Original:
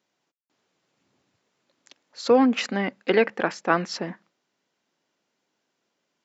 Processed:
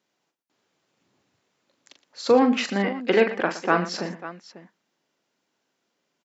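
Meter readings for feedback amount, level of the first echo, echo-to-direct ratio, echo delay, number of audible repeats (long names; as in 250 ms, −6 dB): repeats not evenly spaced, −8.0 dB, −6.5 dB, 40 ms, 3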